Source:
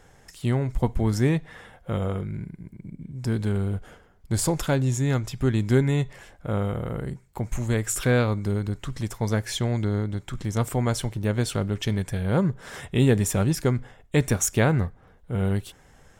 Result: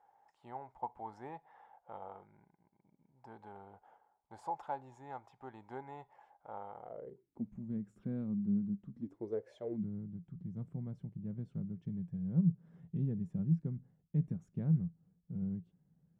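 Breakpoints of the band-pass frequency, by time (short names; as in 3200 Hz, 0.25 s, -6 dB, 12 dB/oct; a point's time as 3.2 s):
band-pass, Q 9.9
6.8 s 840 Hz
7.51 s 200 Hz
8.89 s 200 Hz
9.61 s 640 Hz
9.84 s 170 Hz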